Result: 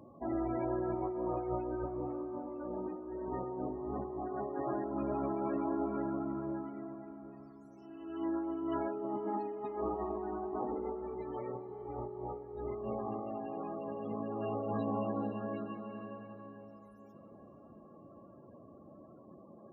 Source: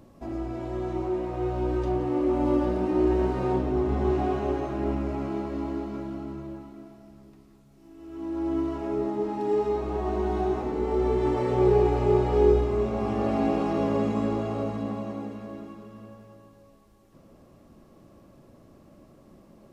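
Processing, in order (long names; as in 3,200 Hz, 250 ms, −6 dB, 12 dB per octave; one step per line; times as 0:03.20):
high-pass filter 52 Hz
spectral tilt +2.5 dB per octave
hum removal 67.49 Hz, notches 25
compressor whose output falls as the input rises −36 dBFS, ratio −1
spectral peaks only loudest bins 32
feedback delay with all-pass diffusion 466 ms, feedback 56%, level −15 dB
level −2 dB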